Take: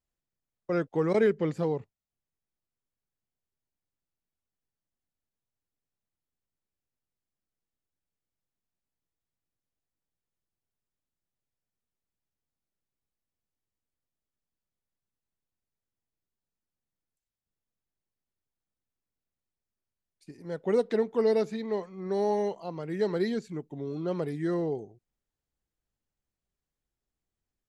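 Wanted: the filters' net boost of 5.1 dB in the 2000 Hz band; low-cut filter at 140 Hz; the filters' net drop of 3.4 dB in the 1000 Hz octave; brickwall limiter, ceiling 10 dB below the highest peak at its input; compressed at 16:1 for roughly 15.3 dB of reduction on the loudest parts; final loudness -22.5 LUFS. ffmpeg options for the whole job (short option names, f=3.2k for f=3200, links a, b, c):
-af "highpass=140,equalizer=f=1k:t=o:g=-6.5,equalizer=f=2k:t=o:g=8,acompressor=threshold=-36dB:ratio=16,volume=23dB,alimiter=limit=-13.5dB:level=0:latency=1"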